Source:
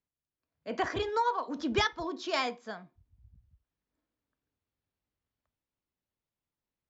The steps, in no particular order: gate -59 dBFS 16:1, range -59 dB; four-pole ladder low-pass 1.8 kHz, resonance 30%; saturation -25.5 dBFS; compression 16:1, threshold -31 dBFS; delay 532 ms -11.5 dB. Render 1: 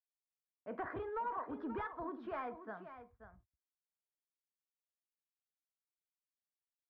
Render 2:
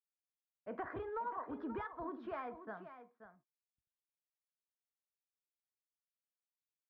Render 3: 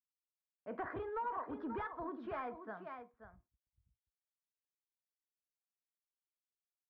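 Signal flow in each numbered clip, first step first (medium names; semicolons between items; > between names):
saturation > compression > delay > gate > four-pole ladder low-pass; compression > saturation > four-pole ladder low-pass > gate > delay; gate > delay > saturation > compression > four-pole ladder low-pass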